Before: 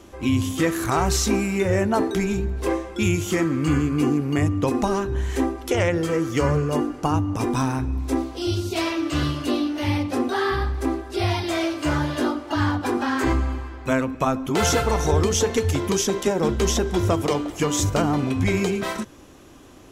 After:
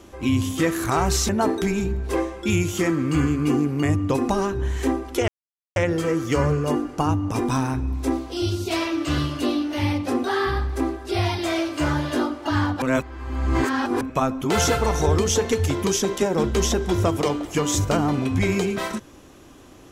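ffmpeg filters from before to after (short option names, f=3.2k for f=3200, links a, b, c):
-filter_complex "[0:a]asplit=5[a][b][c][d][e];[a]atrim=end=1.292[f];[b]atrim=start=1.818:end=5.81,asetpts=PTS-STARTPTS,afade=t=out:st=3.988:d=0.004:c=hsin,apad=pad_dur=0.48[g];[c]atrim=start=5.81:end=12.872,asetpts=PTS-STARTPTS,afade=t=in:d=0.004:c=hsin[h];[d]atrim=start=12.868:end=14.062,asetpts=PTS-STARTPTS,areverse[i];[e]atrim=start=14.058[j];[g][h]concat=n=2:v=0:a=1[k];[f][k]acrossfade=d=0.004:c1=hsin:c2=hsin[l];[l][i]acrossfade=d=0.004:c1=hsin:c2=hsin[m];[m][j]acrossfade=d=0.004:c1=hsin:c2=hsin"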